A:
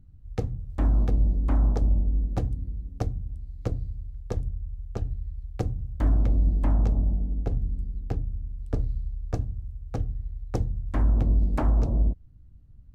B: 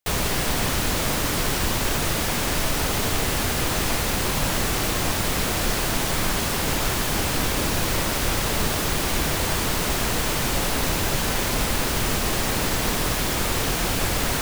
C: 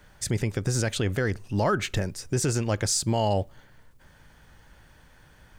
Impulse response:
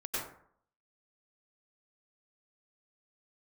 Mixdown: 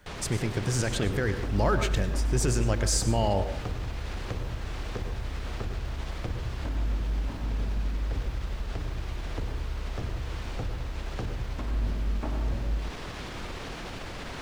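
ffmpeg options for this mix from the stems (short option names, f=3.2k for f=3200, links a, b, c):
-filter_complex "[0:a]alimiter=limit=-23.5dB:level=0:latency=1,adelay=650,volume=3dB,asplit=2[a][b];[b]volume=-12.5dB[c];[1:a]acrossover=split=4900[d][e];[e]acompressor=threshold=-37dB:ratio=4:attack=1:release=60[f];[d][f]amix=inputs=2:normalize=0,alimiter=limit=-18dB:level=0:latency=1,volume=-11.5dB,asplit=2[g][h];[h]volume=-14dB[i];[2:a]volume=-3.5dB,asplit=2[j][k];[k]volume=-11dB[l];[a][g]amix=inputs=2:normalize=0,lowpass=7.9k,acompressor=threshold=-31dB:ratio=6,volume=0dB[m];[3:a]atrim=start_sample=2205[n];[c][i][l]amix=inputs=3:normalize=0[o];[o][n]afir=irnorm=-1:irlink=0[p];[j][m][p]amix=inputs=3:normalize=0"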